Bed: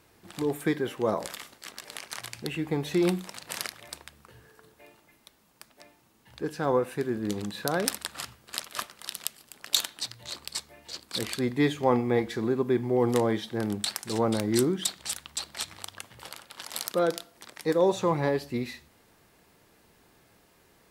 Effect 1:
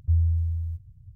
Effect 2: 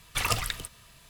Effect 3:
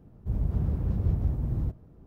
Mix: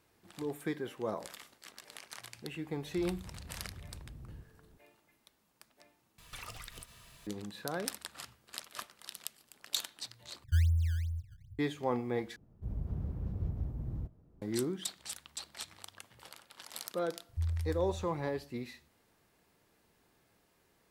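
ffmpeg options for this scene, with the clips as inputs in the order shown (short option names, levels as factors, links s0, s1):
-filter_complex "[3:a]asplit=2[s0][s1];[1:a]asplit=2[s2][s3];[0:a]volume=0.335[s4];[s0]acompressor=threshold=0.0178:ratio=6:attack=3.2:release=140:knee=1:detection=peak[s5];[2:a]acompressor=threshold=0.00891:ratio=6:attack=3.2:release=140:knee=1:detection=peak[s6];[s2]acrusher=samples=16:mix=1:aa=0.000001:lfo=1:lforange=25.6:lforate=2.5[s7];[s4]asplit=4[s8][s9][s10][s11];[s8]atrim=end=6.184[s12];[s6]atrim=end=1.09,asetpts=PTS-STARTPTS,volume=0.75[s13];[s9]atrim=start=7.266:end=10.444[s14];[s7]atrim=end=1.15,asetpts=PTS-STARTPTS,volume=0.531[s15];[s10]atrim=start=11.586:end=12.364[s16];[s1]atrim=end=2.06,asetpts=PTS-STARTPTS,volume=0.316[s17];[s11]atrim=start=14.416[s18];[s5]atrim=end=2.06,asetpts=PTS-STARTPTS,volume=0.299,afade=t=in:d=0.004:c=hsin,afade=t=out:st=2.056:d=0.004:c=hsin,adelay=2720[s19];[s3]atrim=end=1.15,asetpts=PTS-STARTPTS,volume=0.251,afade=t=in:d=0.004:c=hsin,afade=t=out:st=1.146:d=0.004:c=hsin,adelay=17290[s20];[s12][s13]acrossfade=d=0.004:c1=hsin:c2=hsin[s21];[s21][s14]acrossfade=d=0.004:c1=hsin:c2=hsin[s22];[s22][s15]acrossfade=d=0.004:c1=hsin:c2=hsin[s23];[s23][s16]acrossfade=d=0.004:c1=hsin:c2=hsin[s24];[s24][s17]acrossfade=d=0.004:c1=hsin:c2=hsin[s25];[s25][s18]acrossfade=d=0.004:c1=hsin:c2=hsin[s26];[s26][s19][s20]amix=inputs=3:normalize=0"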